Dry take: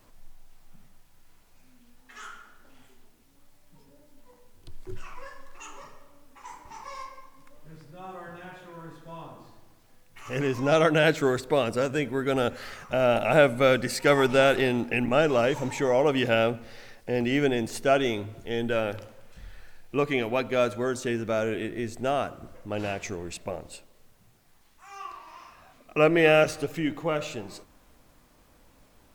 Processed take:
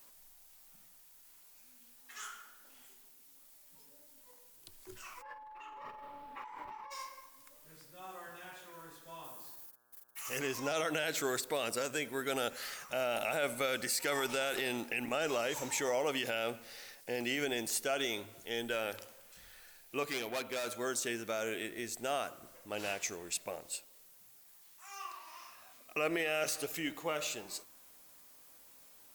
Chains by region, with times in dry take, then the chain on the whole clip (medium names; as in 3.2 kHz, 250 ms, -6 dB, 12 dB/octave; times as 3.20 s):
5.21–6.90 s: compressor with a negative ratio -49 dBFS + whistle 860 Hz -40 dBFS + distance through air 480 m
9.23–10.38 s: gate -54 dBFS, range -24 dB + treble shelf 8.4 kHz +11 dB + mains buzz 120 Hz, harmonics 14, -69 dBFS -1 dB/octave
20.03–20.68 s: dynamic bell 7.5 kHz, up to -5 dB, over -50 dBFS, Q 0.73 + hard clipper -25.5 dBFS
whole clip: RIAA curve recording; peak limiter -17.5 dBFS; trim -6 dB